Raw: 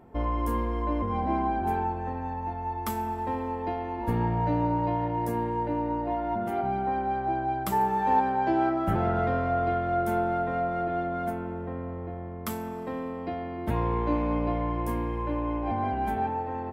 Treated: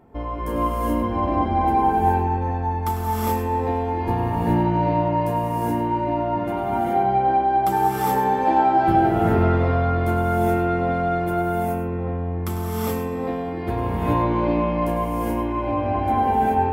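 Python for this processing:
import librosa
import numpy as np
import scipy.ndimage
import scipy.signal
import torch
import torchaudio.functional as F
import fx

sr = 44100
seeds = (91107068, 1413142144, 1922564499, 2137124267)

y = fx.high_shelf(x, sr, hz=7600.0, db=10.5, at=(10.56, 11.38))
y = y + 10.0 ** (-11.5 / 20.0) * np.pad(y, (int(100 * sr / 1000.0), 0))[:len(y)]
y = fx.rev_gated(y, sr, seeds[0], gate_ms=450, shape='rising', drr_db=-6.5)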